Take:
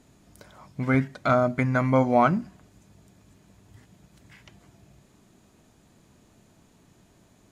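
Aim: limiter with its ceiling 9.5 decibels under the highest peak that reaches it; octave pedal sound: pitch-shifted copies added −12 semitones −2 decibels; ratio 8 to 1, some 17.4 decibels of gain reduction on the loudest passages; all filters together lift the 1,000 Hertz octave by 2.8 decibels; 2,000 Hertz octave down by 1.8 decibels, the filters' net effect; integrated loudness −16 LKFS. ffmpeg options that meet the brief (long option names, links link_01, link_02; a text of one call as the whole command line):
ffmpeg -i in.wav -filter_complex "[0:a]equalizer=frequency=1000:width_type=o:gain=5.5,equalizer=frequency=2000:width_type=o:gain=-5.5,acompressor=threshold=-31dB:ratio=8,alimiter=level_in=4.5dB:limit=-24dB:level=0:latency=1,volume=-4.5dB,asplit=2[link_01][link_02];[link_02]asetrate=22050,aresample=44100,atempo=2,volume=-2dB[link_03];[link_01][link_03]amix=inputs=2:normalize=0,volume=23dB" out.wav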